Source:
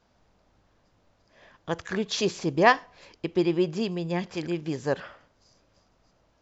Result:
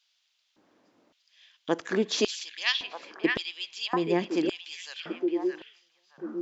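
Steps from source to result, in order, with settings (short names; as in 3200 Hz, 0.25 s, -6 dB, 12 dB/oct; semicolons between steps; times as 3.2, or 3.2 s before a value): delay with a stepping band-pass 0.619 s, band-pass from 2500 Hz, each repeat -1.4 oct, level -3.5 dB; LFO high-pass square 0.89 Hz 280–3200 Hz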